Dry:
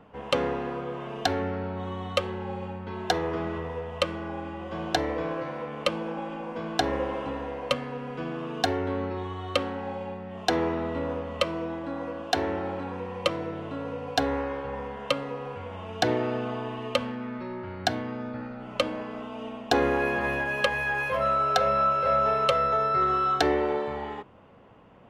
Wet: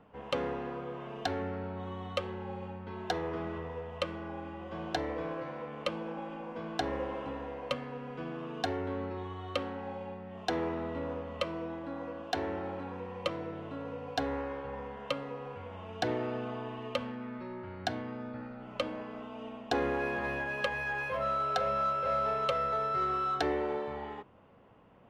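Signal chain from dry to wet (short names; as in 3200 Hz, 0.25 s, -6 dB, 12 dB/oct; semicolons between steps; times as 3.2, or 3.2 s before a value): high shelf 7600 Hz -9 dB; in parallel at -10 dB: hard clip -26 dBFS, distortion -8 dB; on the sum: gain -8.5 dB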